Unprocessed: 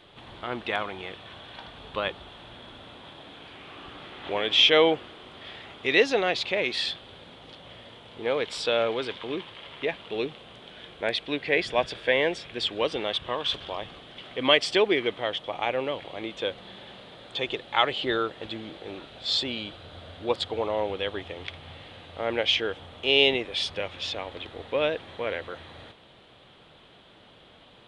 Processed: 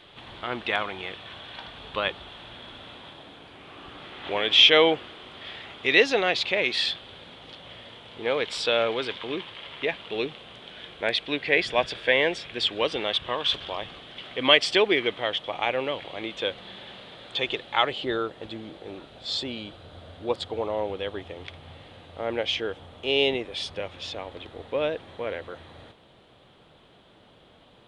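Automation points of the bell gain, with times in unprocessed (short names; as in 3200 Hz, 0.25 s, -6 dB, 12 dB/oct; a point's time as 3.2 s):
bell 2700 Hz 2.4 oct
2.95 s +4 dB
3.49 s -4 dB
4.32 s +3.5 dB
17.57 s +3.5 dB
18.08 s -4.5 dB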